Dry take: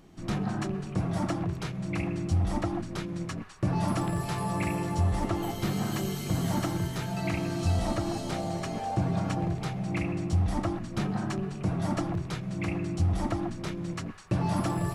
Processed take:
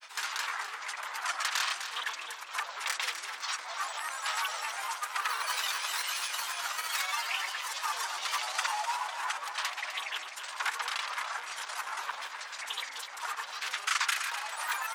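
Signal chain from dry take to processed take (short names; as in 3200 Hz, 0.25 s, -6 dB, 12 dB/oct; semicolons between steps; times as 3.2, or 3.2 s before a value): grains, pitch spread up and down by 0 st; in parallel at +1 dB: negative-ratio compressor -39 dBFS, ratio -1; on the sum: sine folder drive 5 dB, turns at -14.5 dBFS; grains, pitch spread up and down by 7 st; limiter -20.5 dBFS, peak gain reduction 6 dB; HPF 1100 Hz 24 dB/oct; on a send: feedback echo 0.253 s, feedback 41%, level -10 dB; on the sum: gain +3.5 dB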